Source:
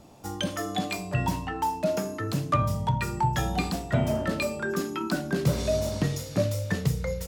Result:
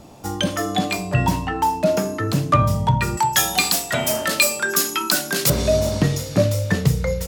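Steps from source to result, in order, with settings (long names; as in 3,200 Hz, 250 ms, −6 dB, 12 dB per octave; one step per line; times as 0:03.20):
0:03.17–0:05.50: spectral tilt +4.5 dB per octave
level +8 dB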